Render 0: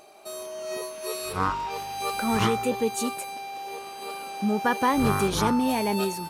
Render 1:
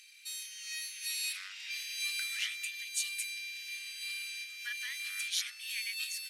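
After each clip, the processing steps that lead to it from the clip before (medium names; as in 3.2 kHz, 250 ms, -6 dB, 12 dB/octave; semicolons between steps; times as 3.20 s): compression 2.5:1, threshold -28 dBFS, peak gain reduction 7 dB; steep high-pass 1.9 kHz 48 dB/octave; treble shelf 12 kHz -11 dB; trim +3.5 dB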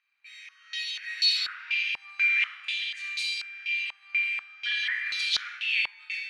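level rider gain up to 6 dB; reverberation RT60 1.3 s, pre-delay 19 ms, DRR -1 dB; step-sequenced low-pass 4.1 Hz 950–4200 Hz; trim -4 dB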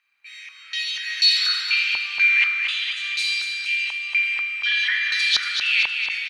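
feedback delay 232 ms, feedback 51%, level -6 dB; trim +6.5 dB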